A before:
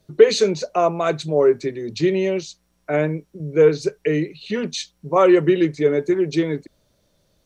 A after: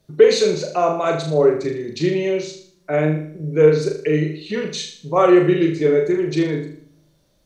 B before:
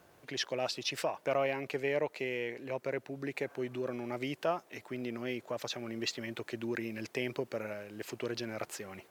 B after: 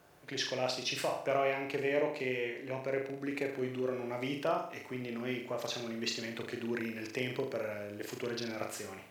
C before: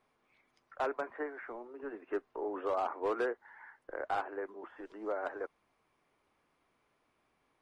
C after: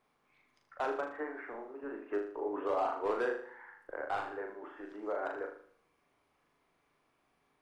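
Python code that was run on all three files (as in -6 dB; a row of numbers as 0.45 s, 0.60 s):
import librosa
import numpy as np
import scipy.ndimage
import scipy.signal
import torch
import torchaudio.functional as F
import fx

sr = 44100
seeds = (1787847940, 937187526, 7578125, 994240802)

p1 = x + fx.room_flutter(x, sr, wall_m=6.7, rt60_s=0.52, dry=0)
p2 = fx.room_shoebox(p1, sr, seeds[0], volume_m3=2200.0, walls='furnished', distance_m=0.33)
y = F.gain(torch.from_numpy(p2), -1.0).numpy()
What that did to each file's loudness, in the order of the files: +1.0 LU, +1.0 LU, +0.5 LU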